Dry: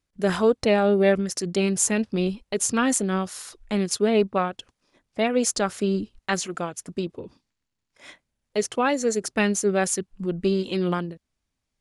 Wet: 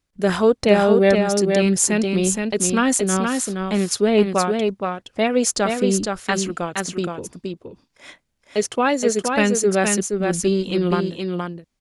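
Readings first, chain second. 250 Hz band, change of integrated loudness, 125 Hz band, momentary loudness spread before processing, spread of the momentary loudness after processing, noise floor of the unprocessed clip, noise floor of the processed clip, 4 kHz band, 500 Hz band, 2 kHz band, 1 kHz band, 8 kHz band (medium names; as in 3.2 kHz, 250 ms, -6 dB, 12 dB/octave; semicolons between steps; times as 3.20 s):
+5.0 dB, +4.5 dB, +5.0 dB, 11 LU, 11 LU, -81 dBFS, -72 dBFS, +5.0 dB, +5.0 dB, +5.0 dB, +5.0 dB, +5.0 dB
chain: delay 470 ms -4.5 dB; trim +3.5 dB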